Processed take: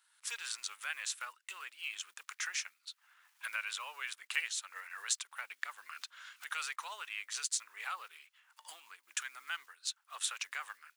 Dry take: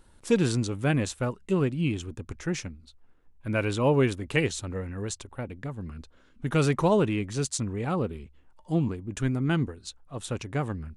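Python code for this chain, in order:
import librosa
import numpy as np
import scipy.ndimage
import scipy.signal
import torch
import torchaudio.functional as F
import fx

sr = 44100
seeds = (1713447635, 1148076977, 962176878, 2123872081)

y = fx.block_float(x, sr, bits=7)
y = fx.recorder_agc(y, sr, target_db=-15.0, rise_db_per_s=24.0, max_gain_db=30)
y = scipy.signal.sosfilt(scipy.signal.butter(4, 1300.0, 'highpass', fs=sr, output='sos'), y)
y = y * 10.0 ** (-5.5 / 20.0)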